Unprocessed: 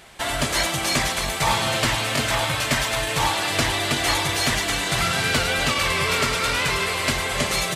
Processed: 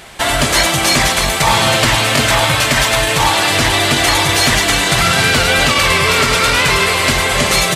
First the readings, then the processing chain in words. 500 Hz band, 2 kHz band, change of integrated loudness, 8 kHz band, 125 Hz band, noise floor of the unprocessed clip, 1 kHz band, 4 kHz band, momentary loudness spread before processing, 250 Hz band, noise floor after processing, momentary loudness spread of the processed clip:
+9.5 dB, +10.0 dB, +9.5 dB, +9.5 dB, +9.5 dB, -27 dBFS, +9.5 dB, +9.5 dB, 2 LU, +9.0 dB, -16 dBFS, 2 LU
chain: loudness maximiser +11.5 dB; trim -1 dB

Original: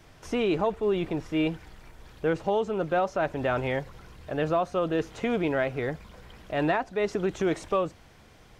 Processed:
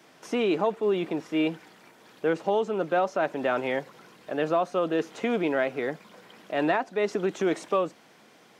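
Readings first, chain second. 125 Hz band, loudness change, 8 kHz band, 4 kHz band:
-6.0 dB, +0.5 dB, no reading, +1.0 dB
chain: high-pass 190 Hz 24 dB/octave; trim +1 dB

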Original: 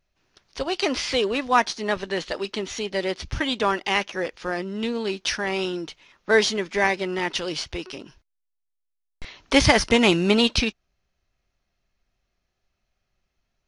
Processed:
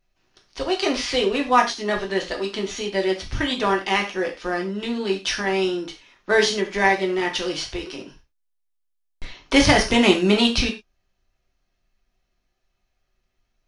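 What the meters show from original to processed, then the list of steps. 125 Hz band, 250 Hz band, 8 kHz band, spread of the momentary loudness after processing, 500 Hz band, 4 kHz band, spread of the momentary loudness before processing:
+1.0 dB, +2.5 dB, +1.0 dB, 12 LU, +2.0 dB, +1.5 dB, 12 LU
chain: gated-style reverb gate 130 ms falling, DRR 1.5 dB; trim -1 dB

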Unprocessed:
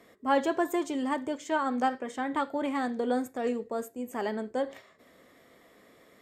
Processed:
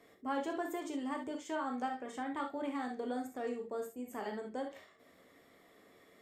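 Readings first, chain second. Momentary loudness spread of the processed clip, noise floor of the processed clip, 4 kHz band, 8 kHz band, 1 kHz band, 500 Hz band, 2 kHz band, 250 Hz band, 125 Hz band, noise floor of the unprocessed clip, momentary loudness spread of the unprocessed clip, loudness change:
5 LU, -64 dBFS, -8.5 dB, -7.5 dB, -9.0 dB, -9.0 dB, -9.0 dB, -8.5 dB, no reading, -60 dBFS, 7 LU, -9.0 dB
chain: gated-style reverb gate 90 ms flat, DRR 2.5 dB; compression 1.5:1, threshold -35 dBFS, peak gain reduction 6 dB; trim -6.5 dB

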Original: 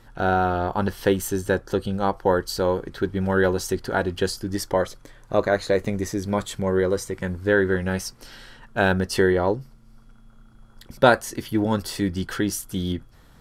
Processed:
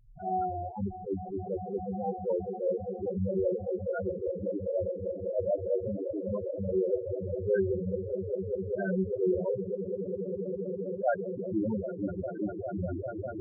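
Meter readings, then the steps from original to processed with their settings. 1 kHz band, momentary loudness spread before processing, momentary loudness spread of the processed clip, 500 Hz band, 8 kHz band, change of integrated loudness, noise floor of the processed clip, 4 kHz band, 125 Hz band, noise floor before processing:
-11.5 dB, 8 LU, 6 LU, -6.5 dB, under -40 dB, -9.0 dB, -41 dBFS, under -40 dB, -9.5 dB, -51 dBFS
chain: echo with a slow build-up 200 ms, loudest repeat 8, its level -11 dB; loudest bins only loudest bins 4; attacks held to a fixed rise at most 180 dB/s; trim -6 dB

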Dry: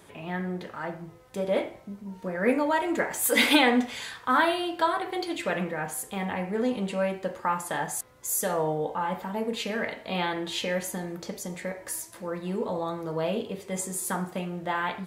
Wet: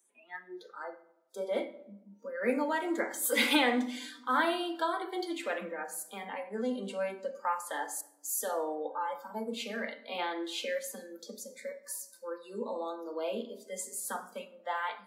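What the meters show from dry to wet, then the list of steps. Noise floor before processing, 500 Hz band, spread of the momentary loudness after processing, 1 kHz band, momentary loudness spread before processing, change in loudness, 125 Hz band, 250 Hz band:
-50 dBFS, -6.0 dB, 16 LU, -6.0 dB, 12 LU, -6.0 dB, under -20 dB, -7.0 dB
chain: spectral noise reduction 24 dB; steep high-pass 200 Hz 96 dB/octave; simulated room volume 2800 m³, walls furnished, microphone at 0.88 m; trim -6 dB

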